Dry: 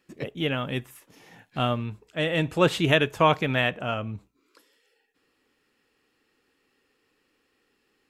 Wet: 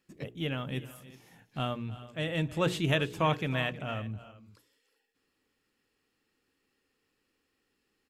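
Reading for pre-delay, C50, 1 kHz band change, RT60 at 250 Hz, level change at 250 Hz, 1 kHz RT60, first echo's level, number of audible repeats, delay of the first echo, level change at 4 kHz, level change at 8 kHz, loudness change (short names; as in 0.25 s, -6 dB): none, none, -8.5 dB, none, -6.0 dB, none, -17.5 dB, 2, 0.316 s, -7.0 dB, -4.5 dB, -7.0 dB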